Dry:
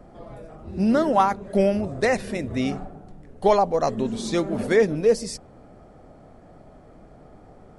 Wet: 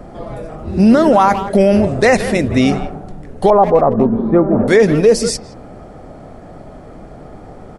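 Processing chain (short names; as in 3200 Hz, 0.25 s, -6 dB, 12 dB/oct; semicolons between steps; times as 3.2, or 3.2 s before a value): 3.5–4.68 LPF 1300 Hz 24 dB/oct; speakerphone echo 0.17 s, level -15 dB; maximiser +14 dB; gain -1 dB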